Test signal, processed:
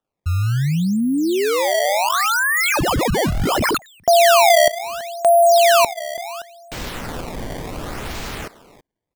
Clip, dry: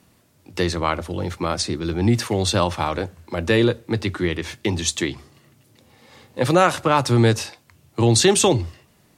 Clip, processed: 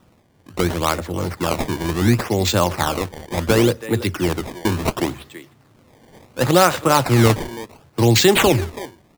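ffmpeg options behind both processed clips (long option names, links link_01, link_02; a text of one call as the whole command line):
ffmpeg -i in.wav -filter_complex "[0:a]asplit=2[link_01][link_02];[link_02]adelay=330,highpass=300,lowpass=3400,asoftclip=type=hard:threshold=-11.5dB,volume=-14dB[link_03];[link_01][link_03]amix=inputs=2:normalize=0,acrusher=samples=19:mix=1:aa=0.000001:lfo=1:lforange=30.4:lforate=0.7,volume=2dB" out.wav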